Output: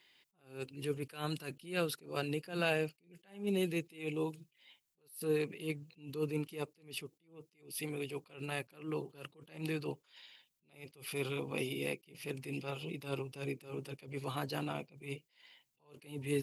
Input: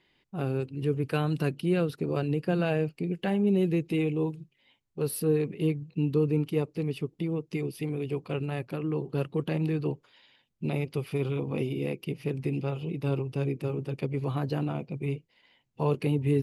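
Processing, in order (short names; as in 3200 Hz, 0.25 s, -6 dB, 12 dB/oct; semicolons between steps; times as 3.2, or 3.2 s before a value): tilt +3.5 dB/oct; attack slew limiter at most 150 dB/s; gain -2 dB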